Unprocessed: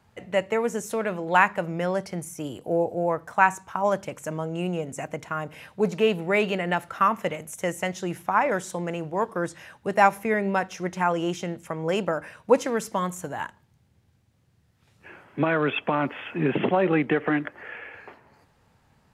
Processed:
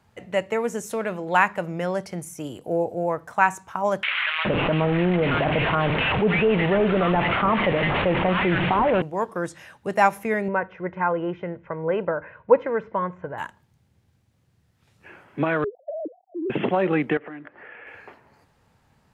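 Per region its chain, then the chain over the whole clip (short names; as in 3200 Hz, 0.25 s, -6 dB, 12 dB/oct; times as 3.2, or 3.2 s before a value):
4.03–9.02 delta modulation 16 kbps, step -28.5 dBFS + bands offset in time highs, lows 0.42 s, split 1500 Hz + fast leveller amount 70%
10.48–13.38 LPF 2100 Hz 24 dB/oct + comb 2 ms, depth 43%
15.64–16.5 sine-wave speech + steep low-pass 710 Hz 96 dB/oct + compressor 2.5:1, threshold -28 dBFS
17.17–17.87 HPF 160 Hz 6 dB/oct + compressor 3:1, threshold -37 dBFS + air absorption 270 m
whole clip: dry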